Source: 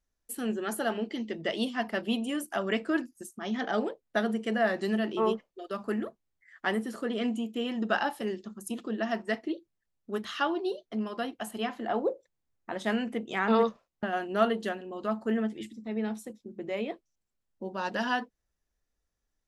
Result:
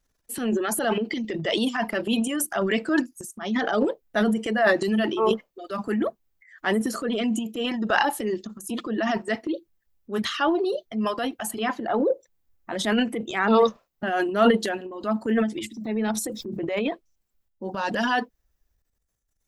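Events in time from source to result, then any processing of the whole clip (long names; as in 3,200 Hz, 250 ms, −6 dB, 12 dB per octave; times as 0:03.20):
0:15.77–0:16.67: envelope flattener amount 50%
whole clip: reverb reduction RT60 1.7 s; transient designer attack −4 dB, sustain +10 dB; level +7 dB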